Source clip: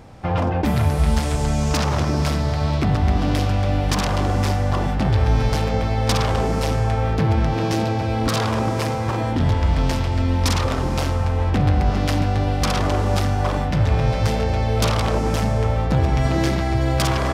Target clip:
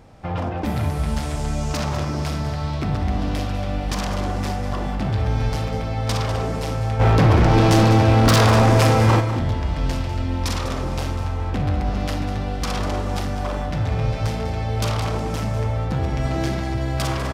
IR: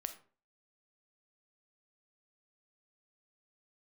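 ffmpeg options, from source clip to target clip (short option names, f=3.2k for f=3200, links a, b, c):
-filter_complex "[0:a]asplit=3[a][b][c];[a]afade=t=out:st=6.99:d=0.02[d];[b]aeval=exprs='0.473*sin(PI/2*2.82*val(0)/0.473)':c=same,afade=t=in:st=6.99:d=0.02,afade=t=out:st=9.19:d=0.02[e];[c]afade=t=in:st=9.19:d=0.02[f];[d][e][f]amix=inputs=3:normalize=0,aecho=1:1:198:0.266[g];[1:a]atrim=start_sample=2205[h];[g][h]afir=irnorm=-1:irlink=0,volume=-2.5dB"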